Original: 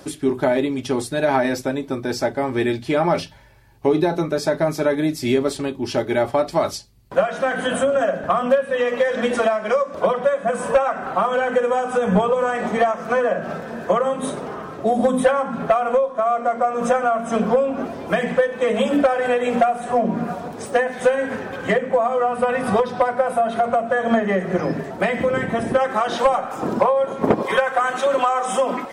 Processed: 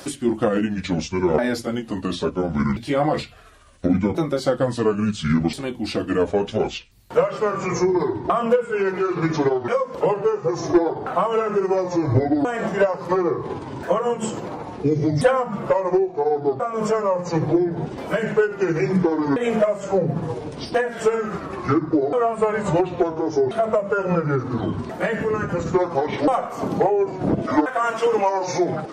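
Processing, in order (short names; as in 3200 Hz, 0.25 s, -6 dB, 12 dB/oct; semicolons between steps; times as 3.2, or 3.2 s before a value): repeated pitch sweeps -10 st, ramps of 1.383 s; mismatched tape noise reduction encoder only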